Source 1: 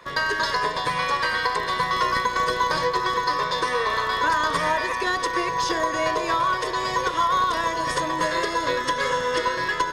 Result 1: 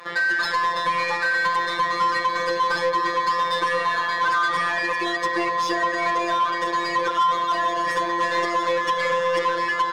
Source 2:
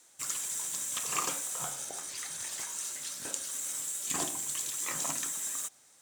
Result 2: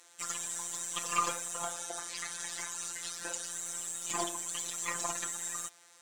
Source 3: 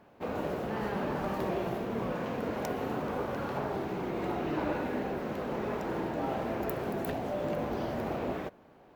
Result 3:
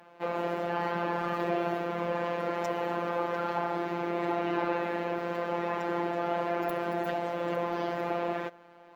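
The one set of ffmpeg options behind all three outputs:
-filter_complex "[0:a]afftfilt=real='hypot(re,im)*cos(PI*b)':imag='0':win_size=1024:overlap=0.75,asplit=2[link_01][link_02];[link_02]highpass=frequency=720:poles=1,volume=21dB,asoftclip=type=tanh:threshold=-7dB[link_03];[link_01][link_03]amix=inputs=2:normalize=0,lowpass=frequency=2800:poles=1,volume=-6dB,volume=-3.5dB" -ar 44100 -c:a libmp3lame -b:a 192k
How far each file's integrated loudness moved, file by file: +1.0, −2.0, +2.5 LU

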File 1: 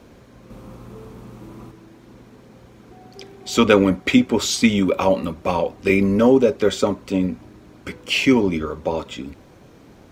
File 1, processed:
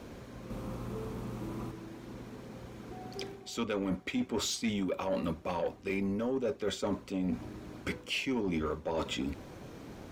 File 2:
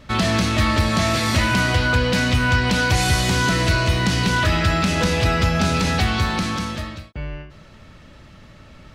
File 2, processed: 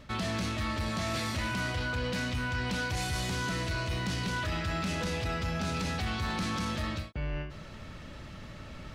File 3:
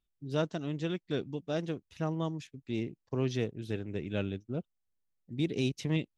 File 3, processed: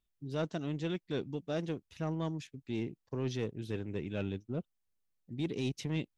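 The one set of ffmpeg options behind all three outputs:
-af "areverse,acompressor=threshold=-28dB:ratio=10,areverse,asoftclip=type=tanh:threshold=-24dB"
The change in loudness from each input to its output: −17.0, −14.0, −2.5 LU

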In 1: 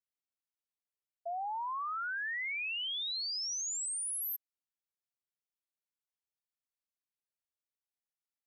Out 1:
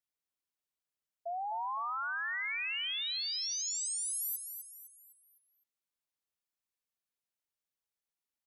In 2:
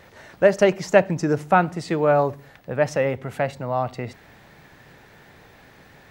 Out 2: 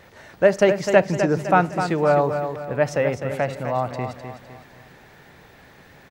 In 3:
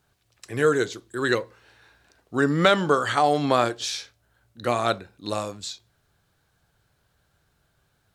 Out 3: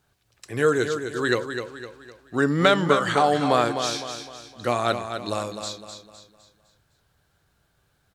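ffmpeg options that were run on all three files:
-af "aecho=1:1:255|510|765|1020|1275:0.398|0.163|0.0669|0.0274|0.0112"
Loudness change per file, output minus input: +0.5, +0.5, +0.5 LU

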